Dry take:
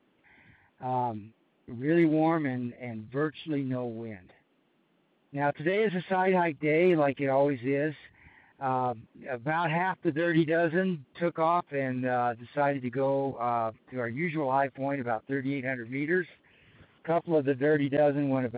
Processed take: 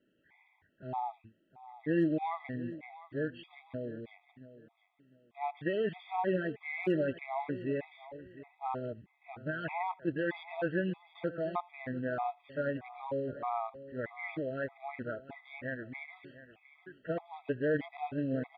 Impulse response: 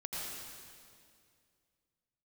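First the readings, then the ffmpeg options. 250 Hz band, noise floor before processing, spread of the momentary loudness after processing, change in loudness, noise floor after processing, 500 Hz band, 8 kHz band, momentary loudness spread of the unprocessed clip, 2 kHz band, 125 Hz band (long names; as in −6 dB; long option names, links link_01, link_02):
−7.5 dB, −70 dBFS, 17 LU, −8.0 dB, −73 dBFS, −8.0 dB, can't be measured, 11 LU, −7.5 dB, −8.0 dB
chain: -filter_complex "[0:a]aecho=1:1:703|1406:0.158|0.0396,asplit=2[link_01][link_02];[1:a]atrim=start_sample=2205,atrim=end_sample=3969[link_03];[link_02][link_03]afir=irnorm=-1:irlink=0,volume=-15dB[link_04];[link_01][link_04]amix=inputs=2:normalize=0,afftfilt=real='re*gt(sin(2*PI*1.6*pts/sr)*(1-2*mod(floor(b*sr/1024/650),2)),0)':imag='im*gt(sin(2*PI*1.6*pts/sr)*(1-2*mod(floor(b*sr/1024/650),2)),0)':win_size=1024:overlap=0.75,volume=-6dB"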